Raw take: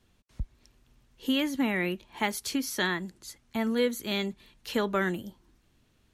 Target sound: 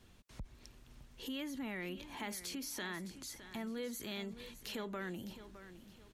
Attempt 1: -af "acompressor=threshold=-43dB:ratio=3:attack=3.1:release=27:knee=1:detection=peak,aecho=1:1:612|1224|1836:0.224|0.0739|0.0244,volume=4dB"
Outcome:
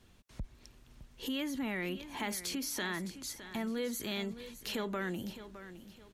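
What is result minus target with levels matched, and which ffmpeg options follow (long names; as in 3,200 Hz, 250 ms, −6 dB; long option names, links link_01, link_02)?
downward compressor: peak gain reduction −5.5 dB
-af "acompressor=threshold=-51.5dB:ratio=3:attack=3.1:release=27:knee=1:detection=peak,aecho=1:1:612|1224|1836:0.224|0.0739|0.0244,volume=4dB"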